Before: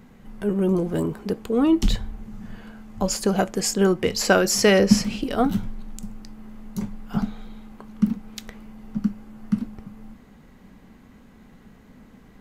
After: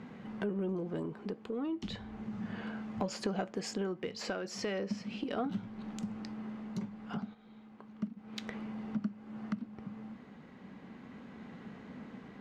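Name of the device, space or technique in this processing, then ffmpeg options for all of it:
AM radio: -filter_complex "[0:a]highpass=140,lowpass=3800,acompressor=threshold=-36dB:ratio=4,asoftclip=type=tanh:threshold=-24dB,tremolo=f=0.34:d=0.39,asplit=3[link_01][link_02][link_03];[link_01]afade=type=out:start_time=7.33:duration=0.02[link_04];[link_02]agate=range=-9dB:threshold=-38dB:ratio=16:detection=peak,afade=type=in:start_time=7.33:duration=0.02,afade=type=out:start_time=8.16:duration=0.02[link_05];[link_03]afade=type=in:start_time=8.16:duration=0.02[link_06];[link_04][link_05][link_06]amix=inputs=3:normalize=0,volume=3dB"

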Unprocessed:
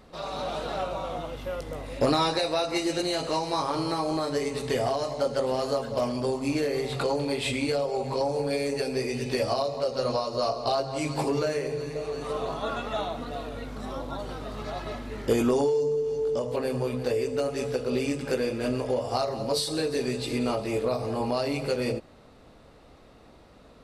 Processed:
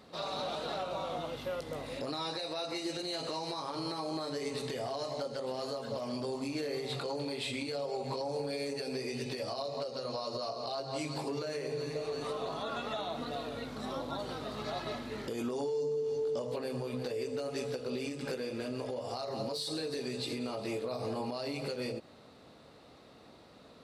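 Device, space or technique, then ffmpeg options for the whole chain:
broadcast voice chain: -af "highpass=110,deesser=0.55,acompressor=threshold=-29dB:ratio=3,equalizer=frequency=4100:width_type=o:width=0.59:gain=5.5,alimiter=level_in=0.5dB:limit=-24dB:level=0:latency=1:release=166,volume=-0.5dB,volume=-2.5dB"

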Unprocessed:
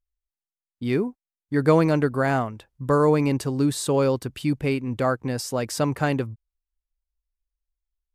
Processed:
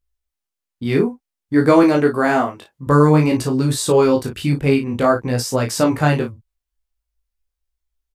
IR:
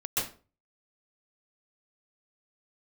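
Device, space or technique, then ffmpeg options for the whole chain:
double-tracked vocal: -filter_complex "[0:a]asplit=2[link_01][link_02];[link_02]adelay=34,volume=-7dB[link_03];[link_01][link_03]amix=inputs=2:normalize=0,flanger=delay=15.5:depth=6.6:speed=0.54,asettb=1/sr,asplit=3[link_04][link_05][link_06];[link_04]atrim=end=1.834[link_07];[link_05]atrim=start=1.83:end=2.87,asetpts=PTS-STARTPTS,afade=type=in:duration=0.004:curve=qsin,afade=type=out:start_time=1.036:duration=0.004:curve=qsin,highpass=180[link_08];[link_06]atrim=start=2.866[link_09];[link_07][link_08]acrossfade=duration=0.004:curve1=hsin:curve2=qsin[link_10];[link_10][link_09]acrossfade=duration=0.004:curve1=qsin:curve2=hsin,volume=9dB"

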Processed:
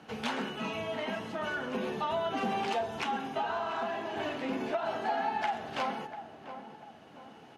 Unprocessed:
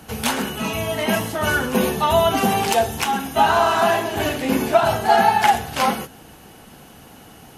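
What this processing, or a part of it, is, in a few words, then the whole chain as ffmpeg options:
AM radio: -filter_complex "[0:a]highpass=180,lowpass=3700,acompressor=threshold=-20dB:ratio=6,asoftclip=type=tanh:threshold=-13dB,tremolo=f=0.38:d=0.29,asettb=1/sr,asplit=3[link_01][link_02][link_03];[link_01]atrim=end=4.704[link_04];[link_02]atrim=start=4.7:end=5.32,asetpts=PTS-STARTPTS,afade=type=in:duration=0.004:curve=qsin,afade=type=out:start_time=0.616:duration=0.004:curve=qsin,highpass=180[link_05];[link_03]atrim=start=5.316[link_06];[link_04][link_05]acrossfade=duration=0.004:curve1=hsin:curve2=qsin[link_07];[link_07][link_06]acrossfade=duration=0.004:curve1=qsin:curve2=hsin,asplit=2[link_08][link_09];[link_09]adelay=692,lowpass=frequency=1200:poles=1,volume=-10dB,asplit=2[link_10][link_11];[link_11]adelay=692,lowpass=frequency=1200:poles=1,volume=0.46,asplit=2[link_12][link_13];[link_13]adelay=692,lowpass=frequency=1200:poles=1,volume=0.46,asplit=2[link_14][link_15];[link_15]adelay=692,lowpass=frequency=1200:poles=1,volume=0.46,asplit=2[link_16][link_17];[link_17]adelay=692,lowpass=frequency=1200:poles=1,volume=0.46[link_18];[link_08][link_10][link_12][link_14][link_16][link_18]amix=inputs=6:normalize=0,volume=-7.5dB"

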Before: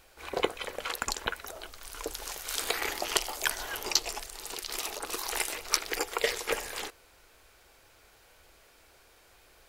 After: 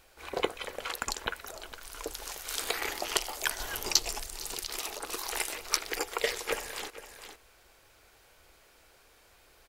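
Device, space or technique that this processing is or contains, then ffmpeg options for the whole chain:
ducked delay: -filter_complex "[0:a]asettb=1/sr,asplit=3[link_01][link_02][link_03];[link_01]atrim=end=3.604[link_04];[link_02]atrim=start=3.6:end=4.67,asetpts=PTS-STARTPTS,afade=type=in:duration=0.004:curve=qsin,afade=type=out:start_time=1.066:duration=0.004:curve=qsin,bass=frequency=250:gain=7,treble=frequency=4000:gain=4[link_05];[link_03]atrim=start=4.666[link_06];[link_04][link_05]acrossfade=duration=0.004:curve1=hsin:curve2=qsin[link_07];[link_07][link_06]acrossfade=duration=0.004:curve1=qsin:curve2=hsin,asplit=3[link_08][link_09][link_10];[link_09]adelay=457,volume=-9dB[link_11];[link_10]apad=whole_len=447205[link_12];[link_11][link_12]sidechaincompress=threshold=-48dB:ratio=8:attack=40:release=234[link_13];[link_08][link_13]amix=inputs=2:normalize=0,volume=-1.5dB"

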